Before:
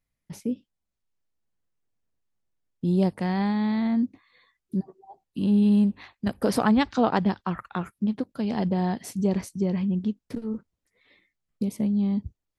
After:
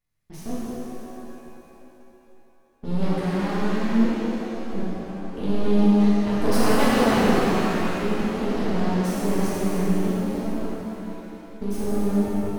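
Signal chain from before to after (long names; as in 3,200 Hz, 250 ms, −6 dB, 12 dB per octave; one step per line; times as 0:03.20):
transient designer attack +2 dB, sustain +6 dB
half-wave rectification
reverb with rising layers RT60 3.3 s, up +7 semitones, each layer −8 dB, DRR −10.5 dB
level −4.5 dB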